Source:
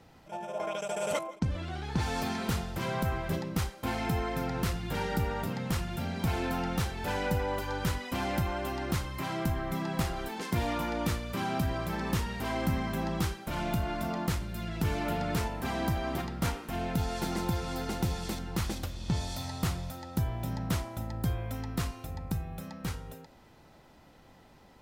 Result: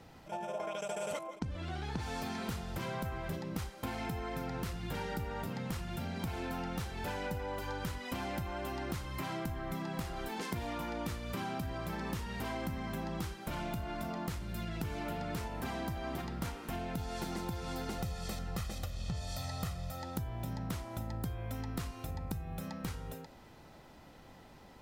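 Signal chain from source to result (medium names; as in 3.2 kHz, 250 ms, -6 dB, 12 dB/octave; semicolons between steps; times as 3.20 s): 17.98–20.03 s: comb 1.6 ms, depth 59%; compression, threshold -37 dBFS, peak gain reduction 13 dB; trim +1.5 dB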